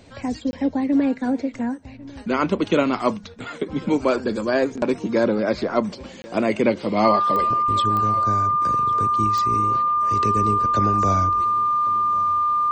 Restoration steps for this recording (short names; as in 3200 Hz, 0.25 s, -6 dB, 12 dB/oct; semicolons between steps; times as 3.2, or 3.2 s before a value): de-click; notch 1200 Hz, Q 30; interpolate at 0.51/6.22, 20 ms; inverse comb 1.098 s -21 dB